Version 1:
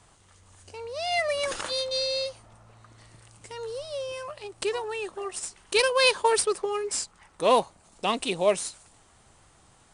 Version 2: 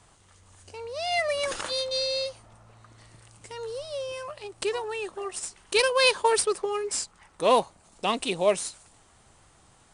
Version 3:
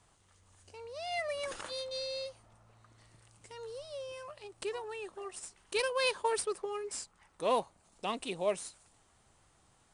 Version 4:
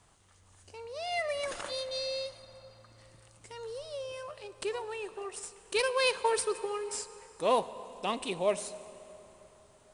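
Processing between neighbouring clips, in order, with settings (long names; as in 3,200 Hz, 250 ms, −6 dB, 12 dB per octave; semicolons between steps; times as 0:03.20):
no processing that can be heard
dynamic equaliser 5,200 Hz, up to −3 dB, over −42 dBFS, Q 0.71; level −9 dB
dense smooth reverb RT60 3.7 s, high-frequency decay 0.75×, DRR 13.5 dB; level +3 dB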